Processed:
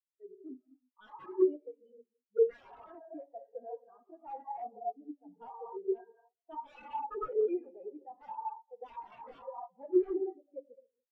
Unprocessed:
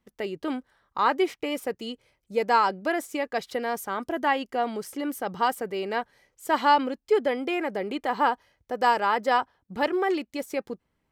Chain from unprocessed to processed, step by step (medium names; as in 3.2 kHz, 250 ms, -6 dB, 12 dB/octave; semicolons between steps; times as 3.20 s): vibrato 13 Hz 55 cents; on a send: feedback echo behind a band-pass 211 ms, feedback 59%, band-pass 840 Hz, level -13 dB; on the sum: gated-style reverb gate 330 ms flat, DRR 0 dB; integer overflow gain 16 dB; spectral contrast expander 4:1